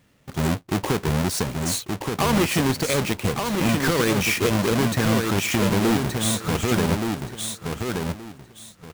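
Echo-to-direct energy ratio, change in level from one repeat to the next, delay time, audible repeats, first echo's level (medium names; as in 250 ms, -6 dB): -4.5 dB, -13.0 dB, 1174 ms, 3, -4.5 dB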